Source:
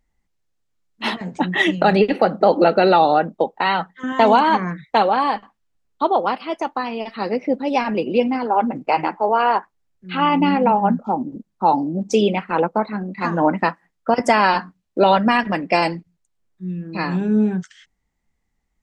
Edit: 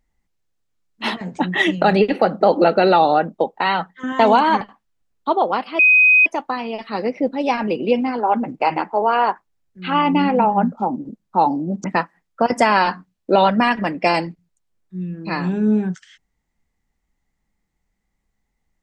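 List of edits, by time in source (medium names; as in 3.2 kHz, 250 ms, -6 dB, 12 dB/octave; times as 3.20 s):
4.61–5.35 s: delete
6.53 s: add tone 2.51 kHz -8.5 dBFS 0.47 s
12.11–13.52 s: delete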